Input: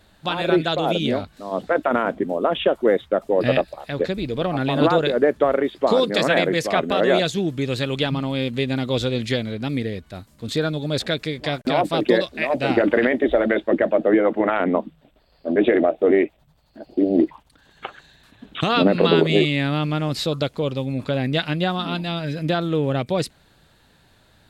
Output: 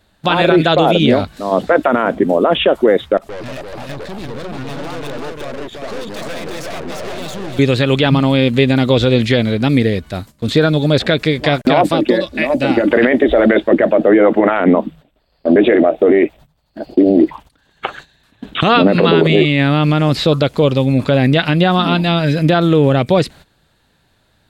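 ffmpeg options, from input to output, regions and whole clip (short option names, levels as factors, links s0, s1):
-filter_complex "[0:a]asettb=1/sr,asplit=3[s0][s1][s2];[s0]atrim=end=3.174[s3];[s1]atrim=start=3.17:end=7.59,asetpts=PTS-STARTPTS,afade=t=in:d=0.004:c=qsin,afade=t=out:st=4.416:d=0.004:c=qsin,acompressor=threshold=0.0251:ratio=2:attack=3.2:release=140:knee=1:detection=peak,aeval=exprs='(tanh(79.4*val(0)+0.7)-tanh(0.7))/79.4':c=same,aecho=1:1:343:0.668,atrim=end_sample=194922[s4];[s2]atrim=start=7.586[s5];[s3][s4]acrossfade=d=0.004:c1=hsin:c2=qsin[s6];[s6][s5]acrossfade=d=0.004:c1=qsin:c2=hsin,asettb=1/sr,asplit=3[s7][s8][s9];[s7]atrim=end=11.914[s10];[s8]atrim=start=11.91:end=12.91,asetpts=PTS-STARTPTS,afade=t=in:d=0.004:c=qsin,afade=t=out:st=0.996:d=0.004:c=qsin,aecho=1:1:3.5:0.39,atrim=end_sample=44100,acrossover=split=310|5400[s11][s12][s13];[s11]acompressor=threshold=0.0398:ratio=4[s14];[s12]acompressor=threshold=0.0398:ratio=4[s15];[s13]acompressor=threshold=0.002:ratio=4[s16];[s14][s15][s16]amix=inputs=3:normalize=0[s17];[s9]atrim=start=12.906[s18];[s10][s17]acrossfade=d=0.004:c1=hsin:c2=qsin[s19];[s19][s18]acrossfade=d=0.004:c1=qsin:c2=hsin,agate=range=0.2:threshold=0.00562:ratio=16:detection=peak,acrossover=split=3700[s20][s21];[s21]acompressor=threshold=0.00794:ratio=4:attack=1:release=60[s22];[s20][s22]amix=inputs=2:normalize=0,alimiter=level_in=4.47:limit=0.891:release=50:level=0:latency=1,volume=0.891"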